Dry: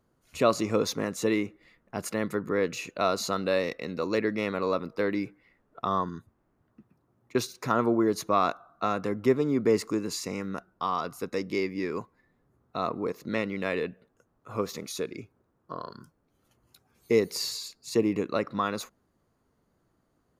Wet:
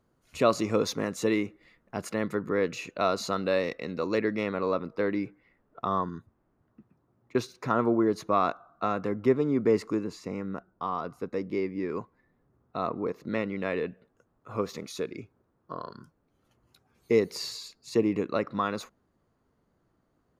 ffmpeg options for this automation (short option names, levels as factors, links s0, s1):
-af "asetnsamples=n=441:p=0,asendcmd='1.97 lowpass f 4800;4.43 lowpass f 2500;10.04 lowpass f 1100;11.89 lowpass f 2200;13.87 lowpass f 4000',lowpass=f=8200:p=1"